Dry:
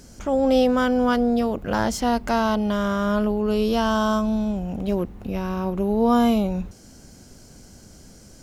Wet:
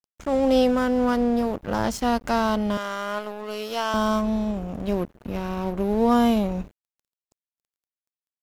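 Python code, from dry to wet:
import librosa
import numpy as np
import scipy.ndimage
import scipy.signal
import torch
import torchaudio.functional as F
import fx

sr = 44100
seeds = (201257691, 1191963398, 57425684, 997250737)

y = fx.dynamic_eq(x, sr, hz=2600.0, q=0.8, threshold_db=-41.0, ratio=4.0, max_db=-7, at=(0.74, 1.84))
y = fx.highpass(y, sr, hz=530.0, slope=12, at=(2.77, 3.94))
y = np.sign(y) * np.maximum(np.abs(y) - 10.0 ** (-36.0 / 20.0), 0.0)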